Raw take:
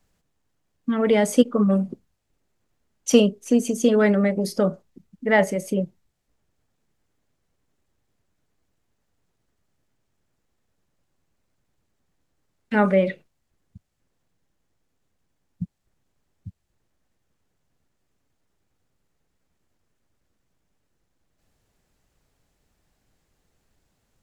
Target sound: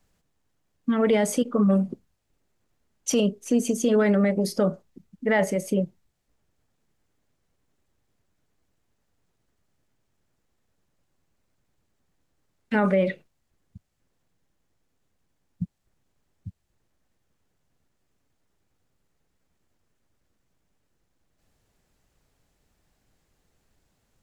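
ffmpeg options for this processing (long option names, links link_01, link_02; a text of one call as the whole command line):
ffmpeg -i in.wav -af "alimiter=limit=-12.5dB:level=0:latency=1:release=37" out.wav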